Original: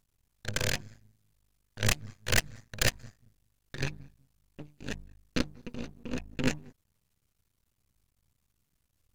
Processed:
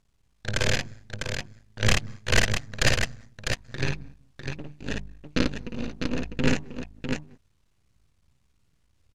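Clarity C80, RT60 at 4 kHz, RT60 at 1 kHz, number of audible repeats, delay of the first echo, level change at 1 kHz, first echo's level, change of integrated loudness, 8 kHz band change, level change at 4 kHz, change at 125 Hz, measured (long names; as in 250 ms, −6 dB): no reverb audible, no reverb audible, no reverb audible, 2, 55 ms, +7.0 dB, −3.0 dB, +4.5 dB, +3.0 dB, +6.0 dB, +7.0 dB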